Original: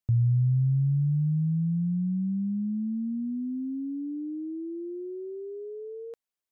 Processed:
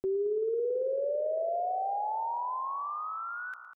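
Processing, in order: pitch shift +11 st; peaking EQ 250 Hz +3.5 dB 0.73 oct; multi-head delay 193 ms, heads first and second, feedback 66%, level -17 dB; speed mistake 45 rpm record played at 78 rpm; reverse; compression 10:1, threshold -28 dBFS, peak gain reduction 11 dB; reverse

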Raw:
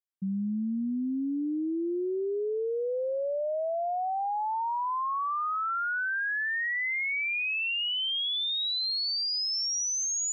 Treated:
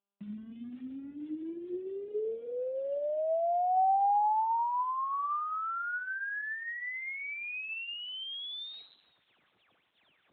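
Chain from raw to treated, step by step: Doppler pass-by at 3.97 s, 21 m/s, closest 11 m; high-pass 74 Hz 12 dB/octave; hum notches 50/100/150/200/250/300/350 Hz; in parallel at -2.5 dB: compression 12:1, threshold -42 dBFS, peak gain reduction 13 dB; on the sum: bit crusher 10-bit; on a send at -17 dB: distance through air 430 m + reverberation RT60 0.50 s, pre-delay 6 ms; on the sum: trim +4.5 dB; AMR-NB 10.2 kbps 8 kHz

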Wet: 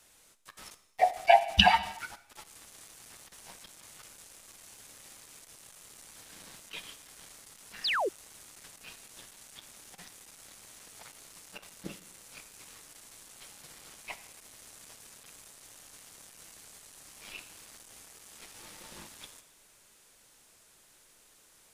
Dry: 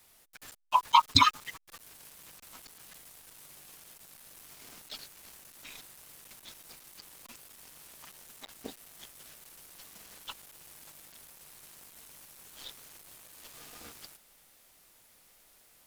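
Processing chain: tape speed -27%; gated-style reverb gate 320 ms falling, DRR 11 dB; painted sound fall, 7.84–8.09 s, 330–5500 Hz -29 dBFS

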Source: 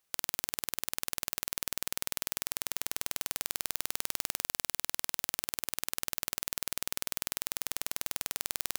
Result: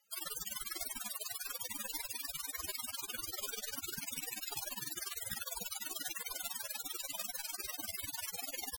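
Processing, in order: pitch shift +1 st; loudest bins only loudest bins 32; trim +13.5 dB

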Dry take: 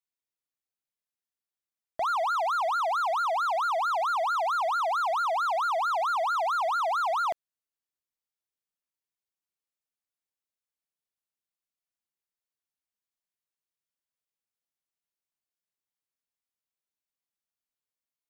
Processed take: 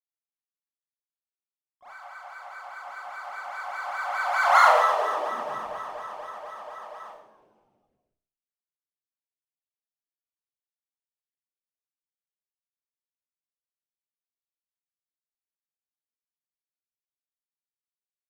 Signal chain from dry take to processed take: Doppler pass-by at 4.59 s, 29 m/s, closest 2.5 m; band-stop 3.8 kHz, Q 11; on a send: frequency-shifting echo 164 ms, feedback 60%, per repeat -96 Hz, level -17 dB; on the sum: Schroeder reverb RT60 0.53 s, combs from 29 ms, DRR -6 dB; harmony voices -4 st -11 dB, +7 st -10 dB; trim +5.5 dB

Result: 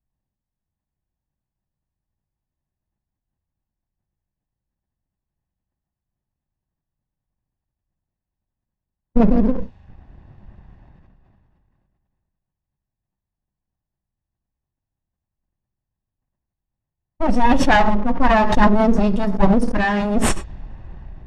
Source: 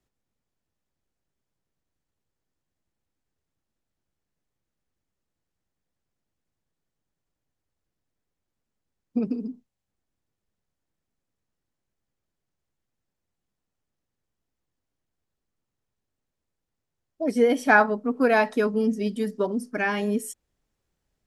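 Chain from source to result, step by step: comb filter that takes the minimum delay 1.1 ms; level rider gain up to 5 dB; level-controlled noise filter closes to 2.1 kHz, open at -23.5 dBFS; reverberation, pre-delay 3 ms, DRR 12.5 dB; waveshaping leveller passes 2; low-pass 7.2 kHz 12 dB/octave; tilt EQ -2.5 dB/octave; decay stretcher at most 22 dB/s; trim -6 dB

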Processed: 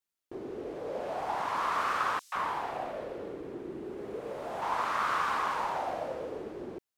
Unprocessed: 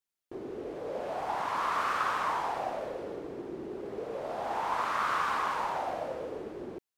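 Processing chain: 2.19–4.62 s: three bands offset in time highs, mids, lows 130/160 ms, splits 730/5300 Hz

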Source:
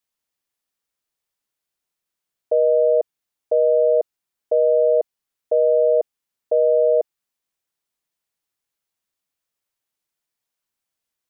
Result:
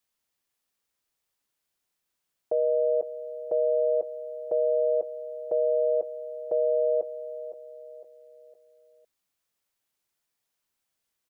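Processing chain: peak limiter -19.5 dBFS, peak gain reduction 9.5 dB; on a send: feedback delay 509 ms, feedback 42%, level -13 dB; on the sum: trim +1.5 dB

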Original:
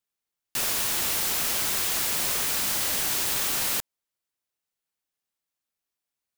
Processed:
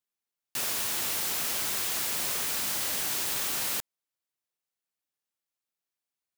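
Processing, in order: high-pass 83 Hz 6 dB/octave; trim -4 dB

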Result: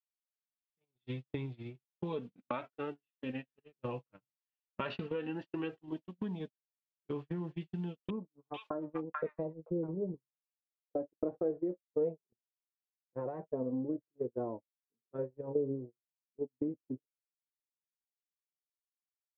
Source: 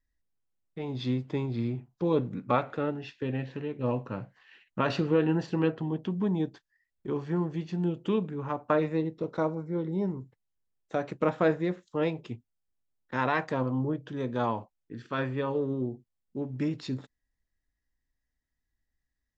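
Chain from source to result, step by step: added noise blue -57 dBFS; flange 0.35 Hz, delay 2.4 ms, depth 4.5 ms, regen +24%; gate -33 dBFS, range -55 dB; compression 5:1, threshold -40 dBFS, peak gain reduction 16.5 dB; low-pass sweep 3 kHz -> 490 Hz, 8.41–9.34 s; 8.10–10.14 s: bands offset in time lows, highs 440 ms, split 1 kHz; trim +3.5 dB

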